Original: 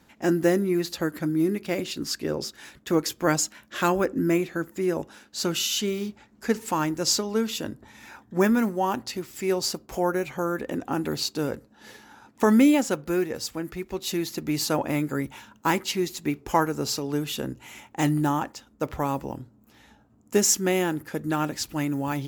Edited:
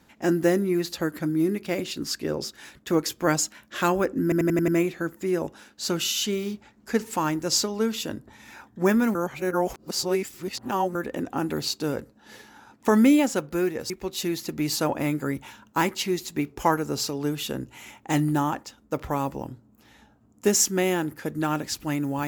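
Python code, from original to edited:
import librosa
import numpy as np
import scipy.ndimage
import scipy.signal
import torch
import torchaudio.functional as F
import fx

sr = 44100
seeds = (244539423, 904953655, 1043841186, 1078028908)

y = fx.edit(x, sr, fx.stutter(start_s=4.23, slice_s=0.09, count=6),
    fx.reverse_span(start_s=8.7, length_s=1.8),
    fx.cut(start_s=13.45, length_s=0.34), tone=tone)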